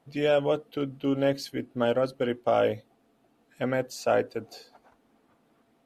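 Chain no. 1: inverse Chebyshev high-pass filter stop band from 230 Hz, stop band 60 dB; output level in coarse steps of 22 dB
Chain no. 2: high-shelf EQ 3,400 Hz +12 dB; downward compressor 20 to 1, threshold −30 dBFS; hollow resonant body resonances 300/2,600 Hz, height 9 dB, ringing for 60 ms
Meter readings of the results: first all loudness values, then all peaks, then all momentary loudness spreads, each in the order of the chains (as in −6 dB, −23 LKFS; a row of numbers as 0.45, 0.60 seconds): −46.0, −34.5 LKFS; −31.0, −16.0 dBFS; 11, 8 LU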